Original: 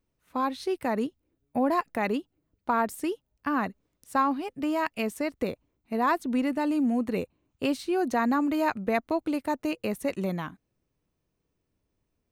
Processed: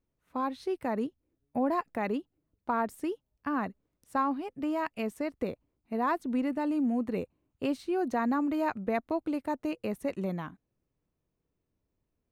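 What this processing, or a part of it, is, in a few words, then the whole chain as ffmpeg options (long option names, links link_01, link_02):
behind a face mask: -af "highshelf=frequency=2200:gain=-7.5,volume=-3dB"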